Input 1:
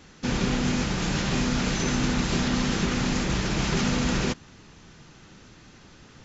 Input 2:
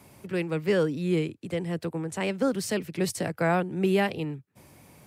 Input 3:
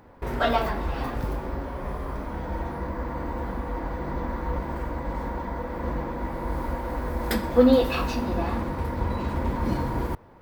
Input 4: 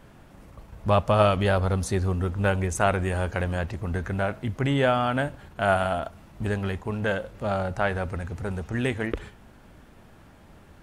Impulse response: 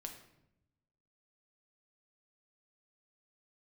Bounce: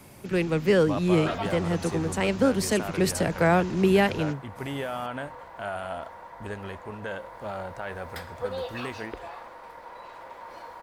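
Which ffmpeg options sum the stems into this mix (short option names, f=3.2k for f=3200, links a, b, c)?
-filter_complex "[0:a]volume=-17.5dB[a];[1:a]acontrast=40,volume=-2dB,asplit=2[b][c];[2:a]highpass=f=550:w=0.5412,highpass=f=550:w=1.3066,highshelf=f=11k:g=-9.5,adelay=850,volume=-8.5dB[d];[3:a]bass=f=250:g=-6,treble=f=4k:g=0,alimiter=limit=-15.5dB:level=0:latency=1,volume=-6.5dB[e];[c]apad=whole_len=275446[f];[a][f]sidechaingate=range=-33dB:threshold=-36dB:ratio=16:detection=peak[g];[g][b][d][e]amix=inputs=4:normalize=0"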